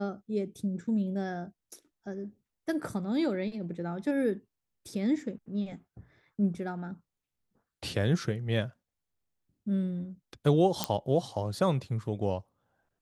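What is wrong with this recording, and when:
10.84 s: pop -10 dBFS

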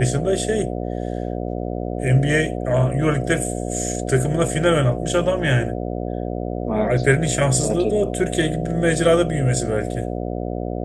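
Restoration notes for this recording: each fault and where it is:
buzz 60 Hz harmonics 12 -26 dBFS

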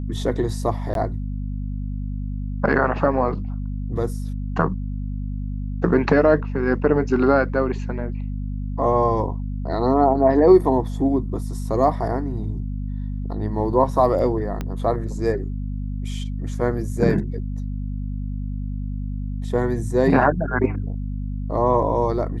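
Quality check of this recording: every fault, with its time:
hum 50 Hz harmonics 5 -27 dBFS
0.94–0.95 s: dropout 12 ms
14.61 s: pop -14 dBFS

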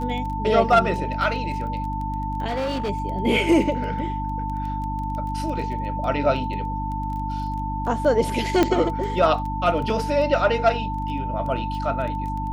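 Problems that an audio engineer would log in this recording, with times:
crackle 10 per s -30 dBFS
hum 50 Hz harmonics 6 -29 dBFS
whine 890 Hz -28 dBFS
2.47–2.90 s: clipped -22 dBFS
8.63 s: pop -5 dBFS

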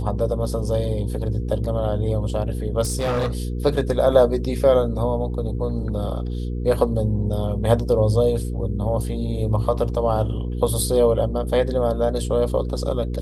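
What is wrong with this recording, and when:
hum 60 Hz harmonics 8 -26 dBFS
2.81–3.30 s: clipped -18.5 dBFS

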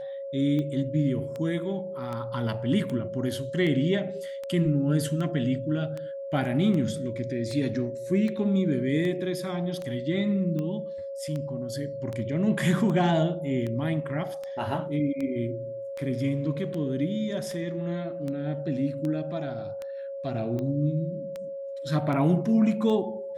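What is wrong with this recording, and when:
tick 78 rpm -22 dBFS
whine 550 Hz -33 dBFS

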